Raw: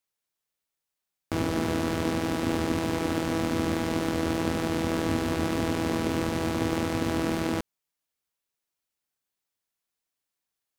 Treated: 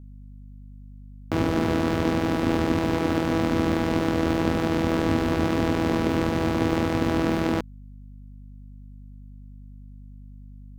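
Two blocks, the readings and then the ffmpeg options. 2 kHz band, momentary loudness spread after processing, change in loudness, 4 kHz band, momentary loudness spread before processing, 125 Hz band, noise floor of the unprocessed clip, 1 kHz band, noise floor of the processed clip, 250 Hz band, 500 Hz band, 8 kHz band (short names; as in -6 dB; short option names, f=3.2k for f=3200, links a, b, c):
+3.0 dB, 1 LU, +4.0 dB, +1.0 dB, 1 LU, +4.5 dB, under -85 dBFS, +4.0 dB, -43 dBFS, +4.5 dB, +4.0 dB, -3.5 dB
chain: -filter_complex "[0:a]aeval=exprs='val(0)+0.00501*(sin(2*PI*50*n/s)+sin(2*PI*2*50*n/s)/2+sin(2*PI*3*50*n/s)/3+sin(2*PI*4*50*n/s)/4+sin(2*PI*5*50*n/s)/5)':c=same,asplit=2[a][b];[b]adynamicsmooth=sensitivity=3:basefreq=1.8k,volume=0.5dB[c];[a][c]amix=inputs=2:normalize=0,volume=-2dB"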